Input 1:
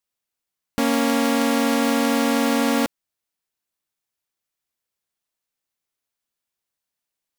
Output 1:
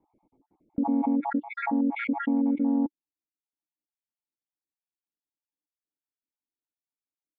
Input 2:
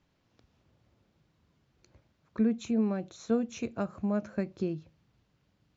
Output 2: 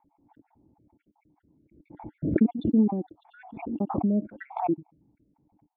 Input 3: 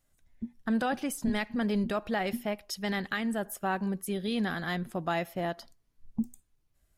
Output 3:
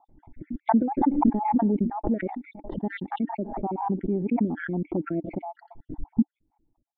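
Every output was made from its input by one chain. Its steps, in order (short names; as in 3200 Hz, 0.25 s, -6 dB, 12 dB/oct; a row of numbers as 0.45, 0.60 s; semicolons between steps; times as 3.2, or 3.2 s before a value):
random spectral dropouts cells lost 51%; vocal tract filter u; backwards sustainer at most 61 dB/s; match loudness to -27 LUFS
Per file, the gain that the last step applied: +1.5, +15.5, +17.0 dB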